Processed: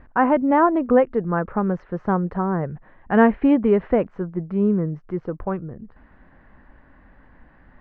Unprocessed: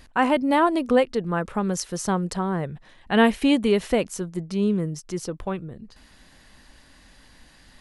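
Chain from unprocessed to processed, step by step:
low-pass filter 1,700 Hz 24 dB per octave
level +3 dB

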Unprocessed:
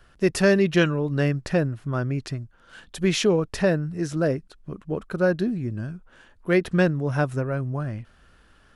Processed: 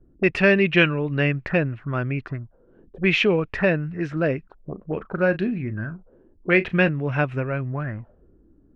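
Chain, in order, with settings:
0:04.73–0:06.89: double-tracking delay 37 ms −13.5 dB
envelope-controlled low-pass 290–2,500 Hz up, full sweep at −23 dBFS

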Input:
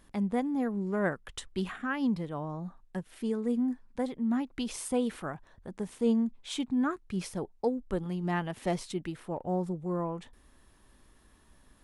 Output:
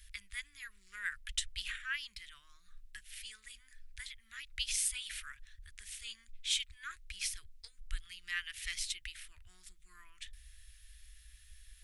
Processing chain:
inverse Chebyshev band-stop filter 150–880 Hz, stop band 50 dB
level +6.5 dB

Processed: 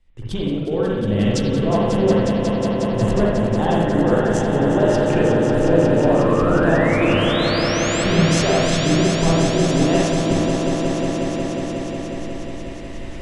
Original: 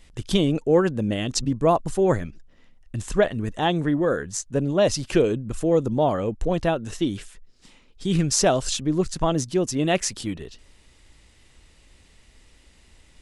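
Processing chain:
camcorder AGC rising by 5.7 dB per second
high-shelf EQ 4,600 Hz −11.5 dB
downward compressor, threshold −21 dBFS, peak gain reduction 8.5 dB
sound drawn into the spectrogram rise, 0:06.21–0:08.04, 1,000–8,000 Hz −32 dBFS
echo that builds up and dies away 181 ms, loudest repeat 5, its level −7 dB
convolution reverb RT60 1.1 s, pre-delay 48 ms, DRR −4 dB
multiband upward and downward expander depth 40%

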